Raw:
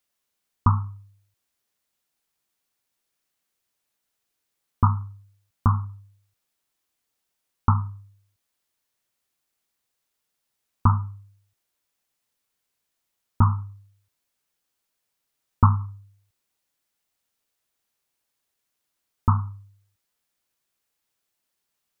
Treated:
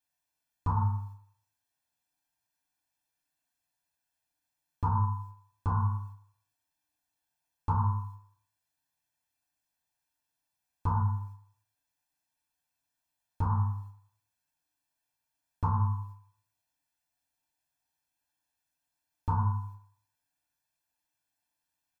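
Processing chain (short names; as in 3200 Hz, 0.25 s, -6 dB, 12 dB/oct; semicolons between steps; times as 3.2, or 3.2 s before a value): gate -52 dBFS, range -9 dB; comb 1.2 ms, depth 77%; de-hum 111.6 Hz, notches 36; limiter -19 dBFS, peak gain reduction 16.5 dB; FDN reverb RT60 0.66 s, low-frequency decay 0.7×, high-frequency decay 0.45×, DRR -5 dB; gain -3.5 dB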